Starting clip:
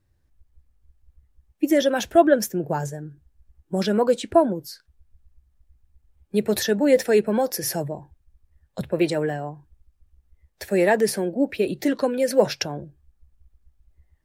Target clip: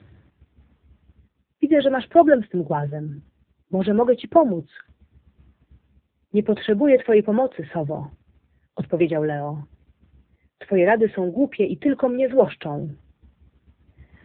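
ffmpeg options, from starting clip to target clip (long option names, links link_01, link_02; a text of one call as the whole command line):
ffmpeg -i in.wav -af "areverse,acompressor=mode=upward:threshold=-24dB:ratio=2.5,areverse,volume=2.5dB" -ar 8000 -c:a libopencore_amrnb -b:a 6700 out.amr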